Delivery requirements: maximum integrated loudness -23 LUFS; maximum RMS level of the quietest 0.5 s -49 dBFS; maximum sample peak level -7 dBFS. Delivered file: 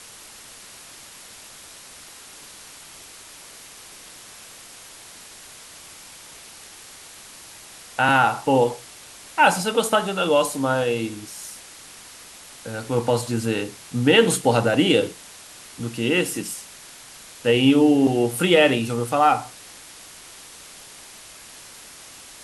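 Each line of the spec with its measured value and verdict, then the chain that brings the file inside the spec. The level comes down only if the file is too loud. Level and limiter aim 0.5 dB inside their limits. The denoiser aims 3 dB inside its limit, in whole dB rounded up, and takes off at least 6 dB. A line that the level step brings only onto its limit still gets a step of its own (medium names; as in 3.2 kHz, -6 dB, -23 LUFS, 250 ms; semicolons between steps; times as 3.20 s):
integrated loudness -20.5 LUFS: fail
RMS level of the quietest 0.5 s -44 dBFS: fail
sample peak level -3.5 dBFS: fail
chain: noise reduction 6 dB, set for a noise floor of -44 dBFS; trim -3 dB; peak limiter -7.5 dBFS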